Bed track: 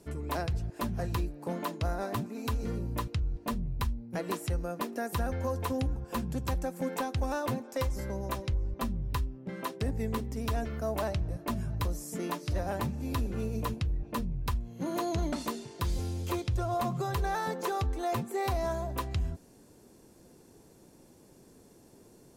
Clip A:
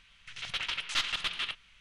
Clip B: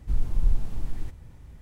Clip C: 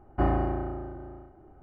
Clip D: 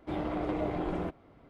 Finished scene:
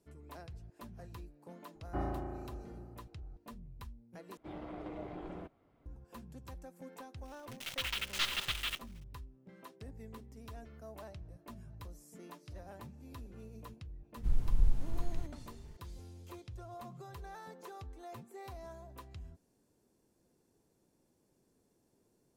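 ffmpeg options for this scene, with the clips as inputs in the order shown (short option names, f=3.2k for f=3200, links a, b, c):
-filter_complex "[0:a]volume=-17dB[a];[1:a]acrusher=bits=7:dc=4:mix=0:aa=0.000001[b];[a]asplit=2[c][d];[c]atrim=end=4.374[e];[4:a]atrim=end=1.49,asetpts=PTS-STARTPTS,volume=-12dB[f];[d]atrim=start=5.856[g];[3:a]atrim=end=1.62,asetpts=PTS-STARTPTS,volume=-12dB,afade=t=in:d=0.004:c=hsin,afade=t=out:st=1.616:d=0.004:c=hsin,adelay=1750[h];[b]atrim=end=1.8,asetpts=PTS-STARTPTS,volume=-3.5dB,afade=t=in:d=0.004:c=hsin,afade=t=out:st=1.796:d=0.004:c=hsin,adelay=7240[i];[2:a]atrim=end=1.61,asetpts=PTS-STARTPTS,volume=-5.5dB,afade=t=in:d=0.004:c=hsin,afade=t=out:st=1.606:d=0.004:c=hsin,adelay=14160[j];[e][f]acrossfade=d=0.004:c1=hsin:c2=hsin[k];[k][g]acrossfade=d=0.004:c1=hsin:c2=hsin[l];[l][h][i][j]amix=inputs=4:normalize=0"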